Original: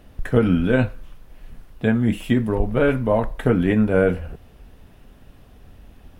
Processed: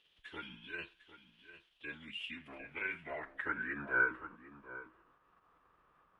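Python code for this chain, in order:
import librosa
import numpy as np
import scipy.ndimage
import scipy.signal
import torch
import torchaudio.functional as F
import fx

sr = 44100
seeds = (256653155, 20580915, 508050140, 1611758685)

p1 = fx.low_shelf(x, sr, hz=110.0, db=9.0)
p2 = fx.pitch_keep_formants(p1, sr, semitones=-7.0)
p3 = p2 + fx.echo_single(p2, sr, ms=751, db=-13.5, dry=0)
y = fx.filter_sweep_bandpass(p3, sr, from_hz=3200.0, to_hz=1200.0, start_s=1.93, end_s=4.33, q=5.0)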